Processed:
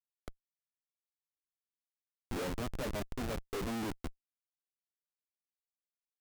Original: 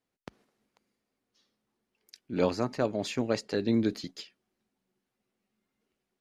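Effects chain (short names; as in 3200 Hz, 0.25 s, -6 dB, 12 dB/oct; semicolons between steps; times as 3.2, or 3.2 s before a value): three-band isolator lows -17 dB, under 200 Hz, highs -23 dB, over 2400 Hz; Schmitt trigger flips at -36.5 dBFS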